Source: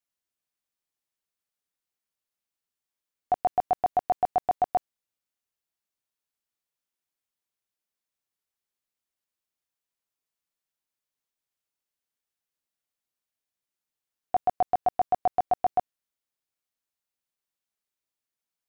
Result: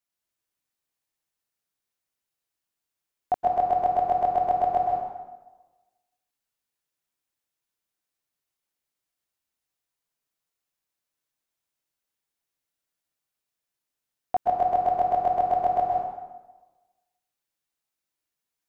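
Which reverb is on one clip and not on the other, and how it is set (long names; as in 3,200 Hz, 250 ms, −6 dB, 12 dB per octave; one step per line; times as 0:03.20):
dense smooth reverb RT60 1.2 s, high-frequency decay 0.75×, pre-delay 110 ms, DRR −0.5 dB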